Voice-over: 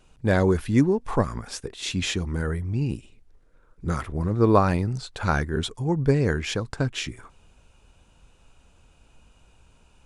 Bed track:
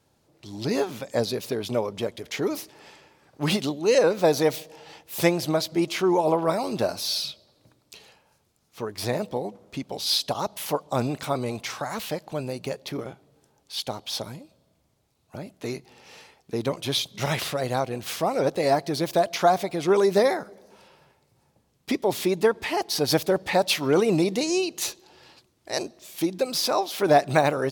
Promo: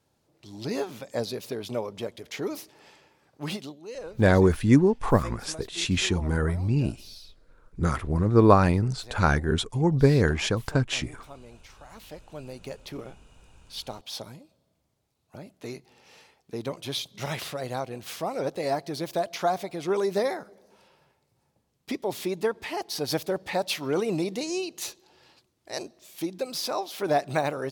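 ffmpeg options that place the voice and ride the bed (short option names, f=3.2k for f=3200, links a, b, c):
-filter_complex "[0:a]adelay=3950,volume=1.5dB[a];[1:a]volume=8.5dB,afade=t=out:st=3.19:d=0.69:silence=0.188365,afade=t=in:st=11.8:d=1.1:silence=0.211349[b];[a][b]amix=inputs=2:normalize=0"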